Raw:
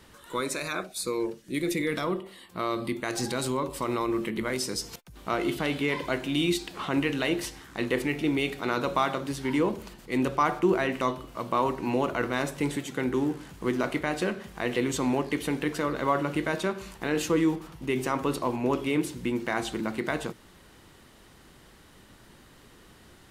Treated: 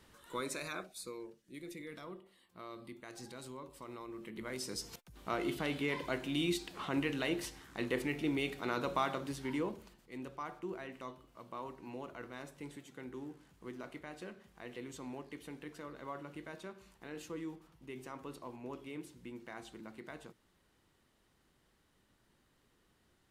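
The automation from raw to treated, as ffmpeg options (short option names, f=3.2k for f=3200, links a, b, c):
-af "volume=2dB,afade=t=out:st=0.63:d=0.62:silence=0.316228,afade=t=in:st=4.17:d=0.74:silence=0.281838,afade=t=out:st=9.24:d=0.87:silence=0.281838"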